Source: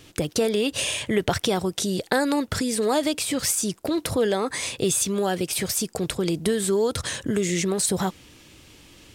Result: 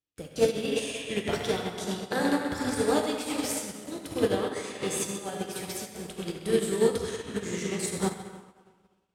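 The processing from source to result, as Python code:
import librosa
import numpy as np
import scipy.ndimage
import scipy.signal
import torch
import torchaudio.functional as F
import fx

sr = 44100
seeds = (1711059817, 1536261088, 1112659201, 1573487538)

y = fx.echo_stepped(x, sr, ms=130, hz=2800.0, octaves=-0.7, feedback_pct=70, wet_db=-1.5)
y = fx.rev_plate(y, sr, seeds[0], rt60_s=3.1, hf_ratio=0.5, predelay_ms=0, drr_db=-3.0)
y = fx.upward_expand(y, sr, threshold_db=-42.0, expansion=2.5)
y = y * librosa.db_to_amplitude(-3.5)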